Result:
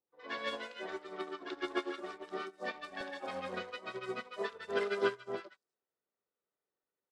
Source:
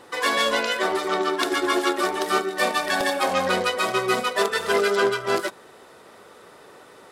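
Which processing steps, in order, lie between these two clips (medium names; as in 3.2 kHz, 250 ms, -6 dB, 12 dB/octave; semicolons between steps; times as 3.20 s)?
distance through air 99 m; three bands offset in time lows, mids, highs 70/250 ms, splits 990/5800 Hz; upward expansion 2.5:1, over -43 dBFS; trim -8 dB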